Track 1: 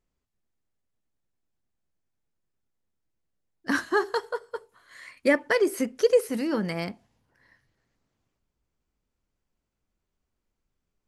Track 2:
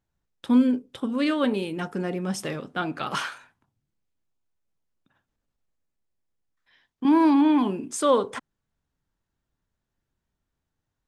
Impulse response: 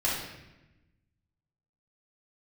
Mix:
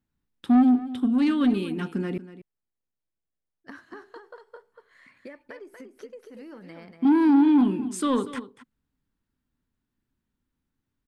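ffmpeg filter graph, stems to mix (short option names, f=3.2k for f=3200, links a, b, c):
-filter_complex "[0:a]bass=f=250:g=-2,treble=f=4k:g=-10,acompressor=threshold=-32dB:ratio=10,volume=-8.5dB,asplit=2[a][b];[b]volume=-6.5dB[c];[1:a]equalizer=f=250:t=o:w=0.67:g=10,equalizer=f=630:t=o:w=0.67:g=-12,equalizer=f=6.3k:t=o:w=0.67:g=-5,asoftclip=type=tanh:threshold=-12.5dB,volume=-1.5dB,asplit=3[d][e][f];[d]atrim=end=2.18,asetpts=PTS-STARTPTS,afade=t=out:st=2.176:d=0.004:c=hsin[g];[e]atrim=start=2.18:end=3.71,asetpts=PTS-STARTPTS,volume=0[h];[f]atrim=start=3.71,asetpts=PTS-STARTPTS,afade=t=in:d=0.004:c=hsin[i];[g][h][i]concat=n=3:v=0:a=1,asplit=2[j][k];[k]volume=-15.5dB[l];[c][l]amix=inputs=2:normalize=0,aecho=0:1:238:1[m];[a][j][m]amix=inputs=3:normalize=0"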